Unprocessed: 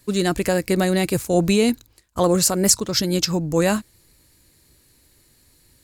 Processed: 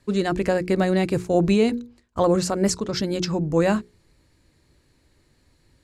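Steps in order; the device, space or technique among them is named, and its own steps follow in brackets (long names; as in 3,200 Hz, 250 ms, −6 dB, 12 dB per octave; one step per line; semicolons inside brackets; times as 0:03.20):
through cloth (low-pass filter 8,100 Hz 12 dB per octave; high-shelf EQ 3,300 Hz −11.5 dB)
mains-hum notches 60/120/180/240/300/360/420/480 Hz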